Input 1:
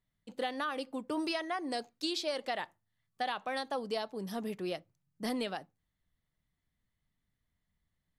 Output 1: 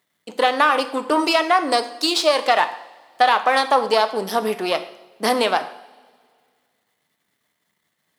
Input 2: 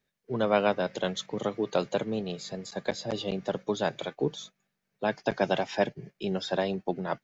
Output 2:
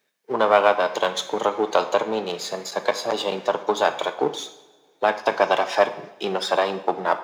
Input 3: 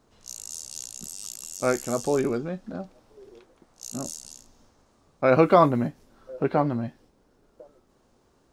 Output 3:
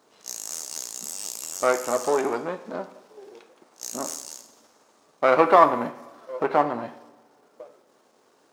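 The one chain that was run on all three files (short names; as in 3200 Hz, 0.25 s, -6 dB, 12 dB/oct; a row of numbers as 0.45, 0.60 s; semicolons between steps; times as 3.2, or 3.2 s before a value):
half-wave gain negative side -7 dB; HPF 350 Hz 12 dB/oct; in parallel at +3 dB: compressor, threshold -36 dBFS; on the sum: dynamic EQ 980 Hz, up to +7 dB, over -42 dBFS, Q 1.2; two-slope reverb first 0.68 s, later 2.2 s, from -18 dB, DRR 9 dB; normalise peaks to -2 dBFS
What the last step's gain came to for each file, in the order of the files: +11.5, +4.5, 0.0 dB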